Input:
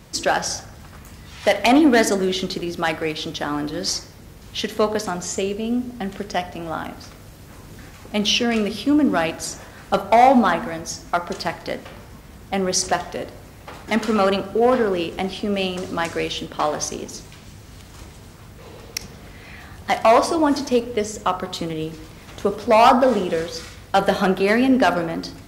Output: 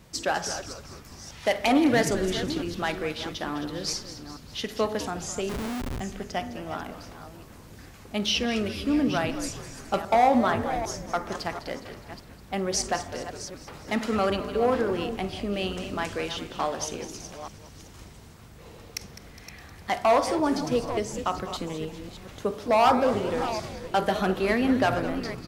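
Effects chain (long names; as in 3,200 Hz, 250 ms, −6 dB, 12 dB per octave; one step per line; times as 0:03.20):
delay that plays each chunk backwards 437 ms, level −11.5 dB
echo with shifted repeats 206 ms, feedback 57%, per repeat −140 Hz, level −13 dB
0:05.49–0:06.00: comparator with hysteresis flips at −25.5 dBFS
level −7 dB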